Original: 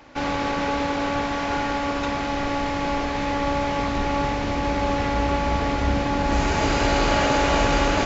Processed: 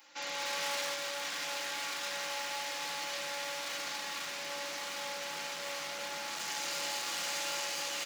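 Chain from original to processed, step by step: comb 5.8 ms, depth 47%; simulated room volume 660 m³, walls furnished, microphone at 2.2 m; level rider gain up to 7.5 dB; overload inside the chain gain 14 dB; on a send: delay 786 ms -4 dB; on the sum: peak limiter -16 dBFS, peak gain reduction 6 dB; high-pass 130 Hz 12 dB/octave; differentiator

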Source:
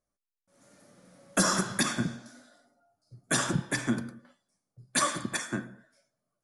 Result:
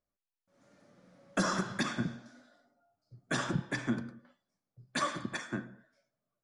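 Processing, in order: distance through air 110 m; trim -3.5 dB

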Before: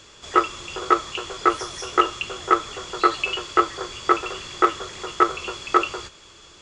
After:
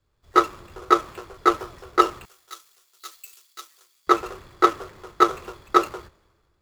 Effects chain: median filter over 15 samples; 2.25–4.07 s: pre-emphasis filter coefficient 0.97; three bands expanded up and down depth 70%; trim -1 dB

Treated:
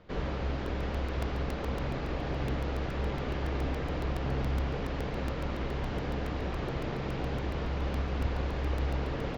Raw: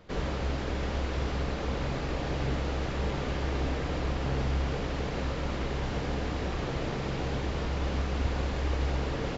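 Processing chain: distance through air 130 m; crackling interface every 0.14 s, samples 128, repeat, from 0.66 s; trim -1.5 dB

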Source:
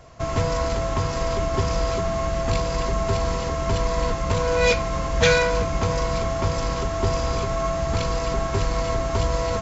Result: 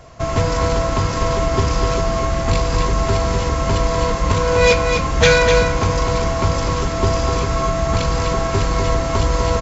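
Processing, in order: delay 250 ms -6 dB; trim +5 dB

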